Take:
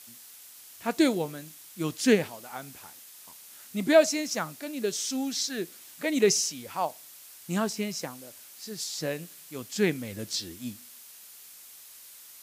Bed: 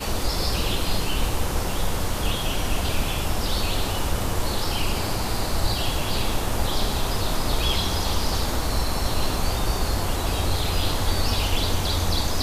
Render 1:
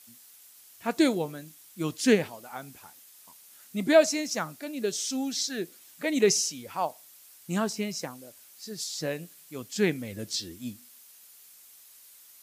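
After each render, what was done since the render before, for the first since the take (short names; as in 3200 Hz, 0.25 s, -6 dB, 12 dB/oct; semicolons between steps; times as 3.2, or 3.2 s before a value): denoiser 6 dB, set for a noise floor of -50 dBFS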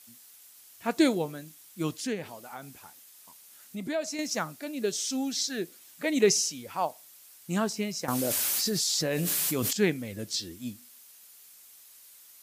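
1.93–4.19 compressor 2:1, threshold -37 dBFS; 8.08–9.73 fast leveller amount 100%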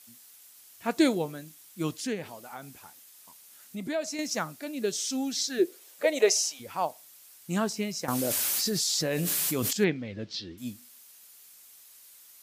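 5.58–6.59 resonant high-pass 340 Hz -> 790 Hz, resonance Q 3.8; 9.84–10.58 LPF 4400 Hz 24 dB/oct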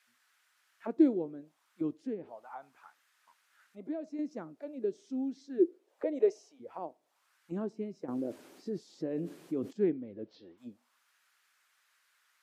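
wow and flutter 25 cents; auto-wah 330–1800 Hz, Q 2.3, down, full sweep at -30.5 dBFS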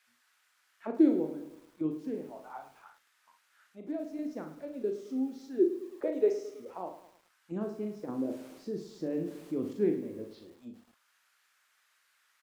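on a send: early reflections 38 ms -7 dB, 58 ms -10 dB; on the sum: lo-fi delay 0.107 s, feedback 55%, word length 9-bit, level -12 dB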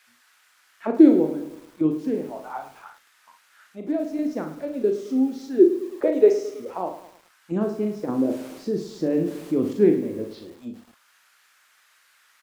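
gain +11 dB; limiter -3 dBFS, peak gain reduction 1 dB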